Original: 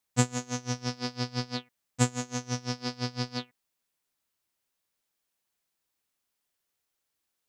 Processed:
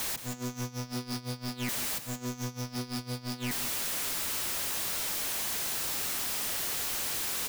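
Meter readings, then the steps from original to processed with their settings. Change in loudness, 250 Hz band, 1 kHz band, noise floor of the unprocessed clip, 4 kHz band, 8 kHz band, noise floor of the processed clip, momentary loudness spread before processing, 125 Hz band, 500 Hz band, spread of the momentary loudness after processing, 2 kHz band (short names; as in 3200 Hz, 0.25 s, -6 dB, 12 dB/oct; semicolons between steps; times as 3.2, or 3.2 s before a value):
+1.0 dB, -3.0 dB, -1.0 dB, -82 dBFS, +4.0 dB, +6.5 dB, -47 dBFS, 9 LU, -5.0 dB, -3.5 dB, 7 LU, +3.5 dB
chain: zero-crossing step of -29.5 dBFS; negative-ratio compressor -35 dBFS, ratio -0.5; echo 0.175 s -10.5 dB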